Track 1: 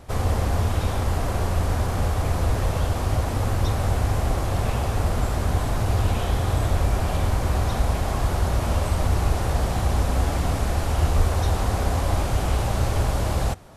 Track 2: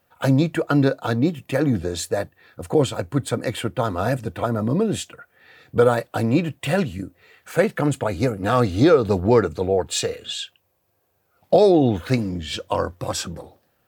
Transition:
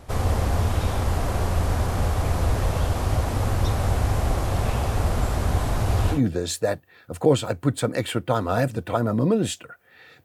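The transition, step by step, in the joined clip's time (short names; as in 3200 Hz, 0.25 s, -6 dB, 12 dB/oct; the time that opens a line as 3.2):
track 1
6.15 switch to track 2 from 1.64 s, crossfade 0.12 s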